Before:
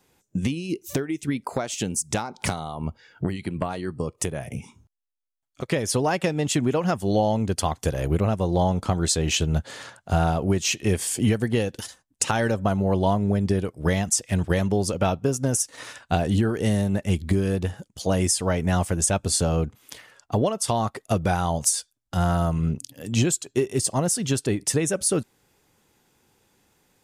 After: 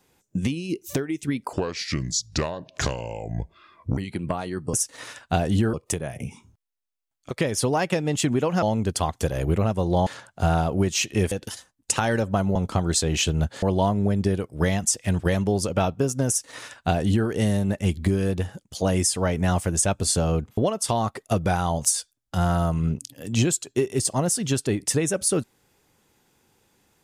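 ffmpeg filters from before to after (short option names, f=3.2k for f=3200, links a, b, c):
-filter_complex "[0:a]asplit=11[a][b][c][d][e][f][g][h][i][j][k];[a]atrim=end=1.534[l];[b]atrim=start=1.53:end=3.29,asetpts=PTS-STARTPTS,asetrate=31752,aresample=44100[m];[c]atrim=start=3.286:end=4.052[n];[d]atrim=start=15.528:end=16.532[o];[e]atrim=start=4.048:end=6.942[p];[f]atrim=start=7.248:end=8.692[q];[g]atrim=start=9.758:end=11.012[r];[h]atrim=start=11.628:end=12.872[s];[i]atrim=start=8.688:end=9.762[t];[j]atrim=start=12.868:end=19.822[u];[k]atrim=start=20.368[v];[l][m]acrossfade=d=0.004:c1=hsin:c2=hsin[w];[w][n]acrossfade=d=0.004:c1=hsin:c2=hsin[x];[x][o]acrossfade=d=0.004:c1=hsin:c2=hsin[y];[y][p]acrossfade=d=0.004:c1=hsin:c2=hsin[z];[z][q]acrossfade=d=0.004:c1=hsin:c2=hsin[aa];[aa][r]acrossfade=d=0.004:c1=hsin:c2=hsin[ab];[ab][s]acrossfade=d=0.004:c1=hsin:c2=hsin[ac];[ac][t]acrossfade=d=0.004:c1=hsin:c2=hsin[ad];[ad][u]acrossfade=d=0.004:c1=hsin:c2=hsin[ae];[ae][v]acrossfade=d=0.004:c1=hsin:c2=hsin"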